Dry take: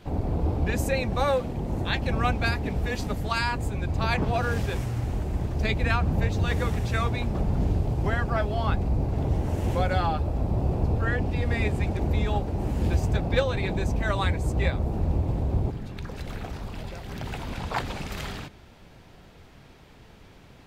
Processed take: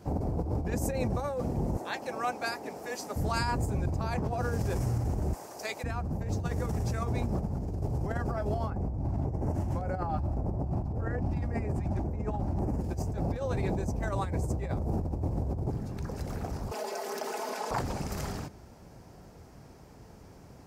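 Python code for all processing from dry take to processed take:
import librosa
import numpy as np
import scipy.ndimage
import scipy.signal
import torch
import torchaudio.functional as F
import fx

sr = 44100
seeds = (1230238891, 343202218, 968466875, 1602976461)

y = fx.chain(x, sr, fx.highpass(hz=290.0, slope=12),
    fx.low_shelf(hz=390.0, db=-11.0), at=(1.77, 3.16))
y = fx.chain(y, sr, fx.highpass(hz=720.0, slope=12),
    fx.high_shelf(hz=4900.0, db=7.5), at=(5.33, 5.84))
y = fx.chain(y, sr, fx.high_shelf(hz=4400.0, db=-10.0),
    fx.filter_lfo_notch(shape='square', hz=1.8, low_hz=460.0, high_hz=3500.0, q=1.8), at=(8.7, 12.81))
y = fx.chain(y, sr, fx.highpass(hz=380.0, slope=24),
    fx.comb(ms=4.7, depth=0.87),
    fx.env_flatten(amount_pct=70), at=(16.71, 17.71))
y = fx.curve_eq(y, sr, hz=(820.0, 3600.0, 5200.0), db=(0, -14, 1))
y = fx.over_compress(y, sr, threshold_db=-28.0, ratio=-1.0)
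y = scipy.signal.sosfilt(scipy.signal.butter(2, 43.0, 'highpass', fs=sr, output='sos'), y)
y = y * librosa.db_to_amplitude(-2.0)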